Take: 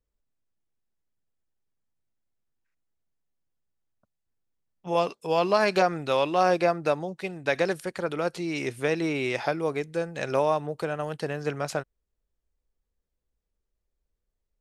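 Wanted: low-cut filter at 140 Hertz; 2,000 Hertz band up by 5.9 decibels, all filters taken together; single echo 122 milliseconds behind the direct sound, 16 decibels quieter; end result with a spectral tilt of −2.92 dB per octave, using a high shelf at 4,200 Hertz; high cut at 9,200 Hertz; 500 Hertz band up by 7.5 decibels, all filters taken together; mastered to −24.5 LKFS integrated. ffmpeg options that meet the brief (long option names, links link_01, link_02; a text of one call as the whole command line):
ffmpeg -i in.wav -af "highpass=140,lowpass=9200,equalizer=frequency=500:width_type=o:gain=8.5,equalizer=frequency=2000:width_type=o:gain=5.5,highshelf=frequency=4200:gain=7,aecho=1:1:122:0.158,volume=-4dB" out.wav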